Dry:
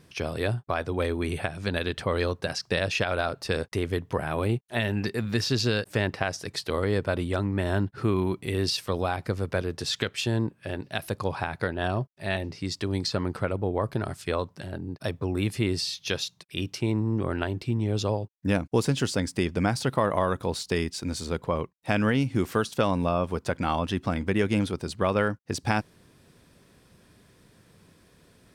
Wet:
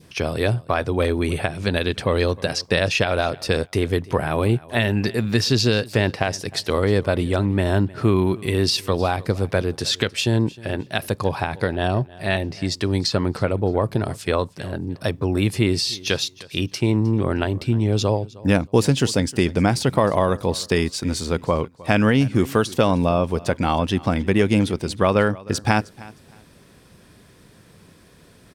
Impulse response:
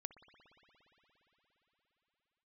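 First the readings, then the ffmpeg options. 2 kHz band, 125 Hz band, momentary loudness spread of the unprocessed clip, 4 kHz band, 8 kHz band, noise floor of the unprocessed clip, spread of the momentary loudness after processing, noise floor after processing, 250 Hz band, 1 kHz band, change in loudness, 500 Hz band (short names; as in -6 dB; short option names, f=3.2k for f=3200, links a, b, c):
+5.5 dB, +7.0 dB, 6 LU, +7.0 dB, +7.0 dB, -61 dBFS, 6 LU, -51 dBFS, +7.0 dB, +5.5 dB, +6.5 dB, +7.0 dB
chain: -af "adynamicequalizer=threshold=0.00631:dfrequency=1400:dqfactor=1.6:tfrequency=1400:tqfactor=1.6:attack=5:release=100:ratio=0.375:range=3:mode=cutabove:tftype=bell,aecho=1:1:310|620:0.0891|0.0205,volume=7dB"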